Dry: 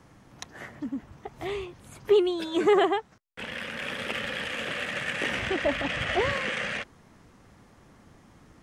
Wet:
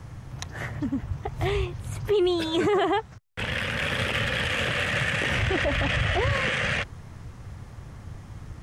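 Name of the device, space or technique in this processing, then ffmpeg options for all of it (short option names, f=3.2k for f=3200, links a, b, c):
car stereo with a boomy subwoofer: -af "lowshelf=f=160:t=q:w=1.5:g=10.5,alimiter=limit=-23dB:level=0:latency=1:release=39,volume=7dB"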